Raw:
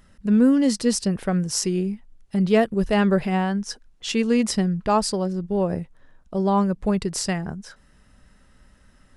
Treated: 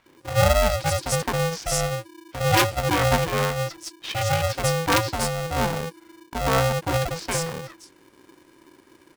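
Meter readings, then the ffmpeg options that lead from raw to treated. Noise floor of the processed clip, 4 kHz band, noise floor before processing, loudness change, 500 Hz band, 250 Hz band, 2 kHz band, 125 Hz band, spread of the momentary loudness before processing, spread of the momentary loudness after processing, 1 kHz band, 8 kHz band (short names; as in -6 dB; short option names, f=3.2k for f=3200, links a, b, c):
-56 dBFS, +3.5 dB, -56 dBFS, -1.0 dB, 0.0 dB, -11.5 dB, +6.5 dB, +2.5 dB, 11 LU, 12 LU, +3.5 dB, +1.5 dB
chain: -filter_complex "[0:a]acrossover=split=280|4500[a][b][c];[a]adelay=60[d];[c]adelay=170[e];[d][b][e]amix=inputs=3:normalize=0,aeval=exprs='(mod(2.66*val(0)+1,2)-1)/2.66':c=same,aeval=exprs='val(0)*sgn(sin(2*PI*330*n/s))':c=same"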